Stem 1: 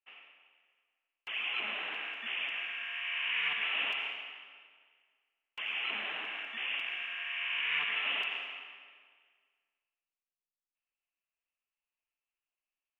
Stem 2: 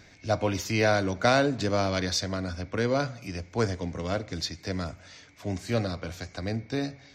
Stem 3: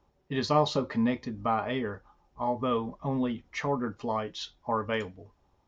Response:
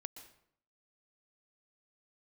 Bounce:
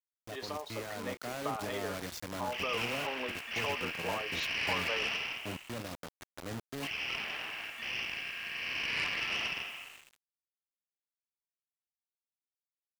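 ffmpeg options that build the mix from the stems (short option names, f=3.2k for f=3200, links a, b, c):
-filter_complex "[0:a]aeval=exprs='(tanh(22.4*val(0)+0.7)-tanh(0.7))/22.4':c=same,adelay=1250,volume=-2dB[a];[1:a]equalizer=f=4.8k:t=o:w=0.93:g=-7.5,alimiter=limit=-20.5dB:level=0:latency=1:release=150,acrusher=bits=4:mix=0:aa=0.000001,volume=-15dB[b];[2:a]highpass=f=390:w=0.5412,highpass=f=390:w=1.3066,acompressor=threshold=-31dB:ratio=6,volume=-7dB[c];[a][b][c]amix=inputs=3:normalize=0,highpass=f=52:p=1,dynaudnorm=f=120:g=17:m=4.5dB,aeval=exprs='val(0)*gte(abs(val(0)),0.00316)':c=same"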